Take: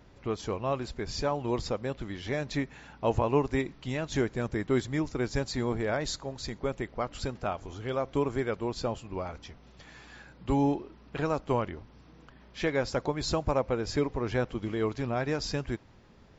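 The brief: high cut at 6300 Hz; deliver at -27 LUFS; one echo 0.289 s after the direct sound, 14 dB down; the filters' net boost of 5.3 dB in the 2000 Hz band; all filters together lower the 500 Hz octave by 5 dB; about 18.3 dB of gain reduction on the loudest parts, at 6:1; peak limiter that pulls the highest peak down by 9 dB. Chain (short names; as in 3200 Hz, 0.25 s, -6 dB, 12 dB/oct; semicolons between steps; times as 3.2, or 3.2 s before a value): LPF 6300 Hz; bell 500 Hz -6.5 dB; bell 2000 Hz +7 dB; compressor 6:1, threshold -44 dBFS; limiter -40.5 dBFS; echo 0.289 s -14 dB; gain +23.5 dB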